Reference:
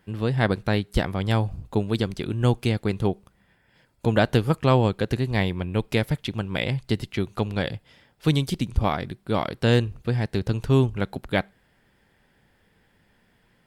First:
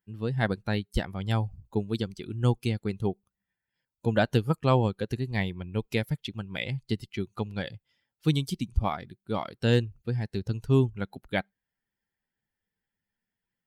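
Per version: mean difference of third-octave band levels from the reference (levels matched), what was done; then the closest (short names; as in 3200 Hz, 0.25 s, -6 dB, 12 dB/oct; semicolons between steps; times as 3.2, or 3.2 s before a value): 5.0 dB: per-bin expansion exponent 1.5; gain -2 dB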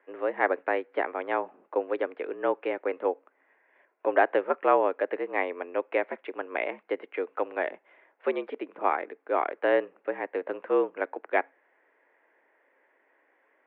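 12.5 dB: mistuned SSB +78 Hz 310–2200 Hz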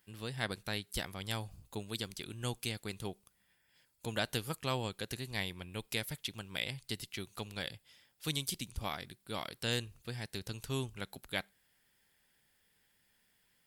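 7.0 dB: pre-emphasis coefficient 0.9; gain +1 dB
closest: first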